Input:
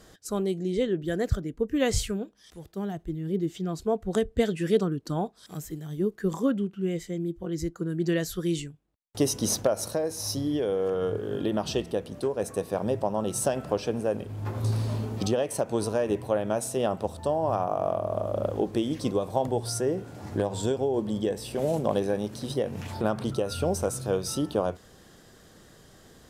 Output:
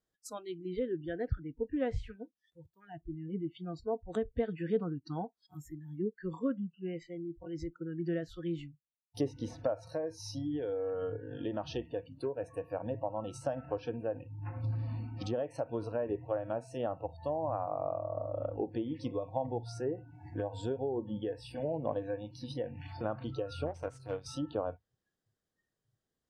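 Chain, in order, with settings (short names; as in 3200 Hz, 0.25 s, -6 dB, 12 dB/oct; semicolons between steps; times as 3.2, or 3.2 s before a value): spectral noise reduction 28 dB; 23.66–24.26 power-law curve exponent 1.4; treble ducked by the level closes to 1500 Hz, closed at -23 dBFS; gain -7.5 dB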